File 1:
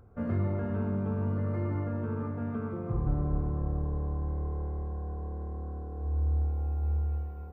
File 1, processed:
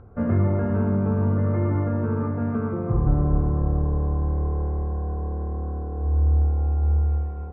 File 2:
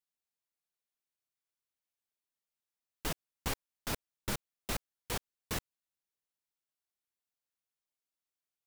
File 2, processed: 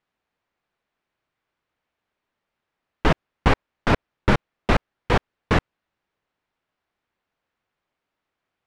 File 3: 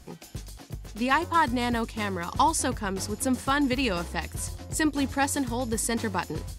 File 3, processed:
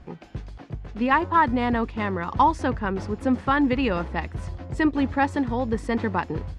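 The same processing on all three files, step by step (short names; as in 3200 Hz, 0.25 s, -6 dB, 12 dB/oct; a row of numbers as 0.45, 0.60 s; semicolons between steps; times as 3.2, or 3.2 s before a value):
LPF 2100 Hz 12 dB/oct; match loudness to -24 LUFS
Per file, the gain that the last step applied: +9.0, +20.0, +4.0 dB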